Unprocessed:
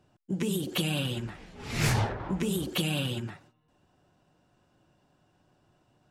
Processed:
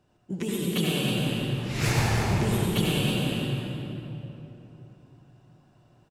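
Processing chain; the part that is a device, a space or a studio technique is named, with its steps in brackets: cave (echo 0.318 s -9.5 dB; reverb RT60 3.2 s, pre-delay 69 ms, DRR -4 dB); gain -1.5 dB

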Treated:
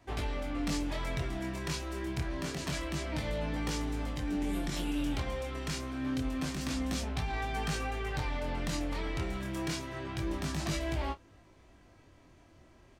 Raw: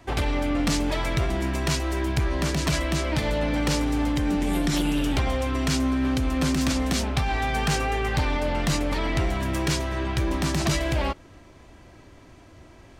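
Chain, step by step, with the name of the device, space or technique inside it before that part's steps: double-tracked vocal (doubler 30 ms -14 dB; chorus 0.27 Hz, delay 18 ms, depth 7.2 ms); gain -7.5 dB

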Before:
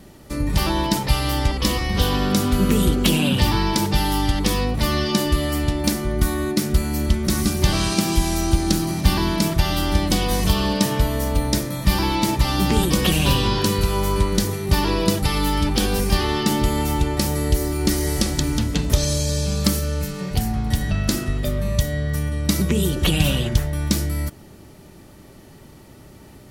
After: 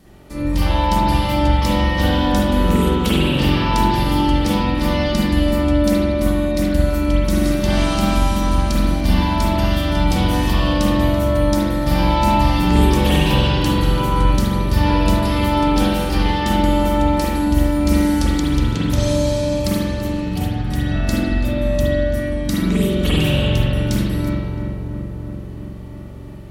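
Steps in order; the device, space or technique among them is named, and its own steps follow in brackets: dub delay into a spring reverb (darkening echo 0.334 s, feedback 76%, low-pass 1500 Hz, level -6 dB; spring tank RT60 1.3 s, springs 44 ms, chirp 35 ms, DRR -7.5 dB); gain -6 dB

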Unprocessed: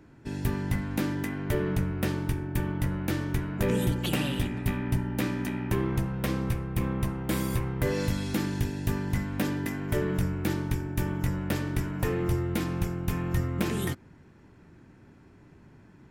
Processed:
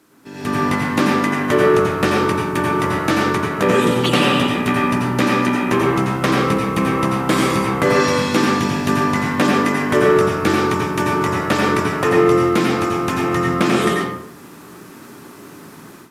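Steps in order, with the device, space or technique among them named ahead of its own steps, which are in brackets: filmed off a television (BPF 250–7700 Hz; bell 1200 Hz +9.5 dB 0.24 oct; reverb RT60 0.70 s, pre-delay 82 ms, DRR -1 dB; white noise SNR 31 dB; AGC gain up to 15 dB; AAC 96 kbps 32000 Hz)

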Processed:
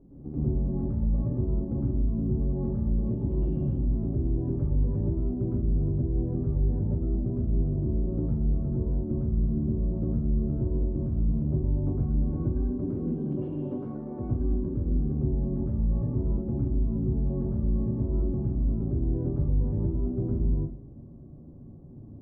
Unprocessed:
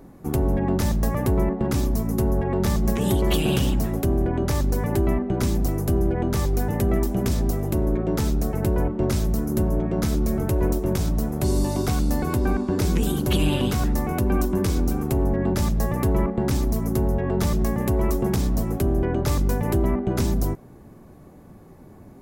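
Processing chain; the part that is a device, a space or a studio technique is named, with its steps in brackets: 12.73–14.18 HPF 140 Hz -> 450 Hz 12 dB/oct; television next door (compressor, threshold -24 dBFS, peak gain reduction 8.5 dB; LPF 340 Hz 12 dB/oct; reverb RT60 0.45 s, pre-delay 0.103 s, DRR -6.5 dB); gain -7.5 dB

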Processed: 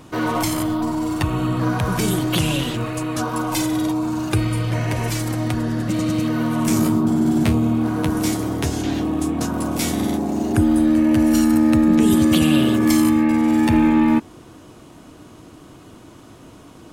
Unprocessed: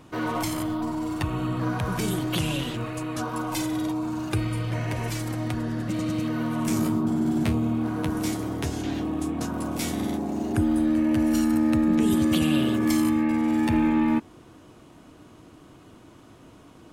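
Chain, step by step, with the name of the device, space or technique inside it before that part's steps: exciter from parts (in parallel at -7.5 dB: HPF 3300 Hz 12 dB/oct + soft clip -39.5 dBFS, distortion -7 dB); on the sum: gain +6.5 dB

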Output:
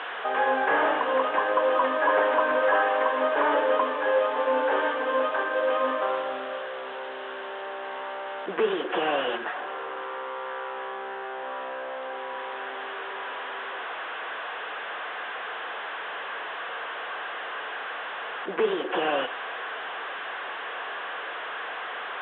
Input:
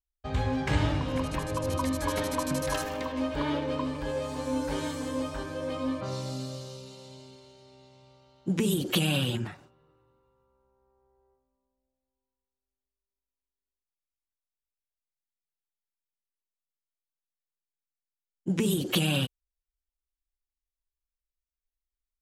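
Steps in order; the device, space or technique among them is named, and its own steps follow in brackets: digital answering machine (BPF 350–3400 Hz; delta modulation 16 kbps, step -39 dBFS; speaker cabinet 450–3600 Hz, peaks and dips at 460 Hz +7 dB, 730 Hz +6 dB, 1100 Hz +6 dB, 1600 Hz +8 dB, 2300 Hz -5 dB, 3500 Hz +7 dB); gain +8 dB

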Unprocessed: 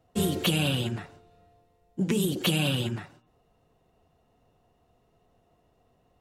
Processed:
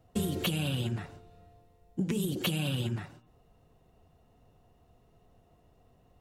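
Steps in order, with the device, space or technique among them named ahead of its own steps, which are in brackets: ASMR close-microphone chain (low shelf 170 Hz +7.5 dB; compressor 6:1, threshold -28 dBFS, peak gain reduction 10 dB; high shelf 11000 Hz +4 dB)

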